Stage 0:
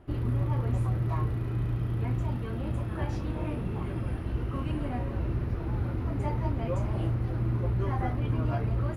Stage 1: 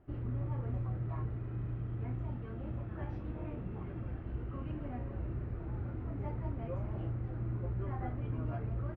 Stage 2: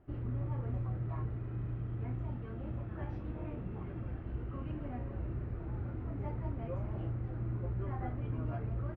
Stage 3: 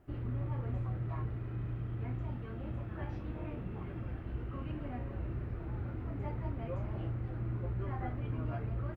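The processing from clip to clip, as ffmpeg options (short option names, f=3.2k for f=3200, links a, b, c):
-filter_complex "[0:a]lowpass=2.1k,equalizer=f=980:w=4.8:g=-4,asplit=2[a][b];[b]adelay=32,volume=-12dB[c];[a][c]amix=inputs=2:normalize=0,volume=-9dB"
-af anull
-af "highshelf=f=2k:g=7.5"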